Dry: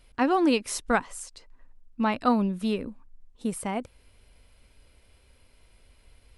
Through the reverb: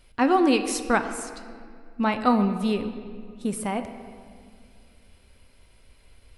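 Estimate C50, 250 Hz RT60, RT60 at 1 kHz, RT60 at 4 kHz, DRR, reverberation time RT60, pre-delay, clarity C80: 10.0 dB, 2.7 s, 2.0 s, 1.4 s, 7.5 dB, 2.1 s, 5 ms, 10.5 dB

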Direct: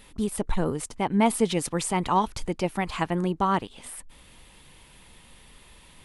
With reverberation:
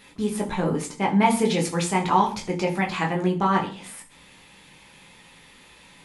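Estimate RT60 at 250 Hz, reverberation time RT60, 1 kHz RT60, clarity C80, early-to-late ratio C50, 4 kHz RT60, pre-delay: 0.55 s, 0.40 s, 0.35 s, 16.5 dB, 12.0 dB, 0.50 s, 10 ms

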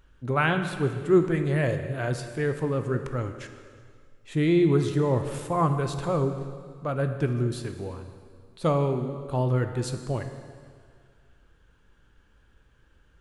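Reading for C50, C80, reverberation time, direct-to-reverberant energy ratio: 8.5 dB, 9.5 dB, 2.0 s, 7.0 dB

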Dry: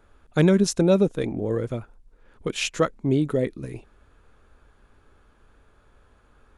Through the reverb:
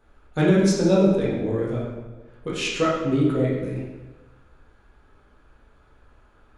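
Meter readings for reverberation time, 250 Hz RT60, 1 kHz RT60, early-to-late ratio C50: 1.2 s, 1.3 s, 1.2 s, 0.5 dB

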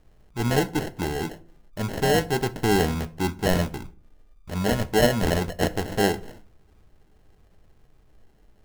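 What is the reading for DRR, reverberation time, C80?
11.0 dB, 0.50 s, 24.0 dB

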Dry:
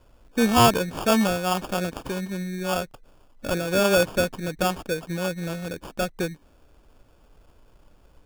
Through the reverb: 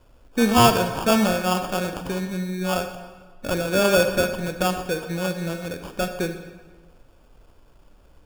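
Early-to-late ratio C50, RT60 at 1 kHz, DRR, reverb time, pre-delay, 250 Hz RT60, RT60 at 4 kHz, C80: 8.5 dB, 1.4 s, 7.5 dB, 1.5 s, 33 ms, 1.4 s, 1.0 s, 10.0 dB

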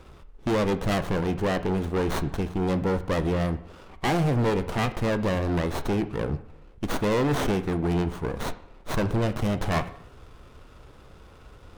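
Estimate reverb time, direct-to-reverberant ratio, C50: 0.65 s, 10.0 dB, 14.0 dB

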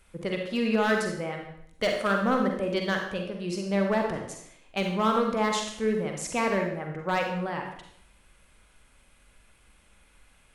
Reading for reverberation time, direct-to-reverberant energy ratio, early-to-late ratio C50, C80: 0.70 s, 2.0 dB, 4.0 dB, 7.5 dB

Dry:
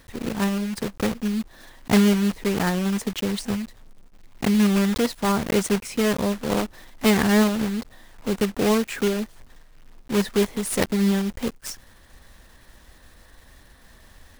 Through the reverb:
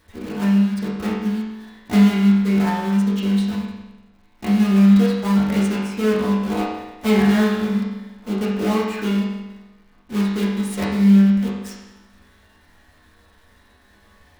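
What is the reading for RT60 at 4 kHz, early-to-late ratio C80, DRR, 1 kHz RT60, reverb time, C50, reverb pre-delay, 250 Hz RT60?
1.0 s, 3.5 dB, -8.0 dB, 1.1 s, 1.1 s, 1.0 dB, 5 ms, 1.1 s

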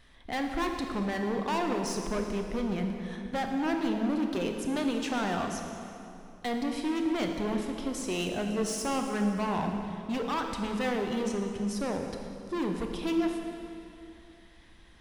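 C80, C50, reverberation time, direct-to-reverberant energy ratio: 5.0 dB, 4.0 dB, 2.8 s, 3.0 dB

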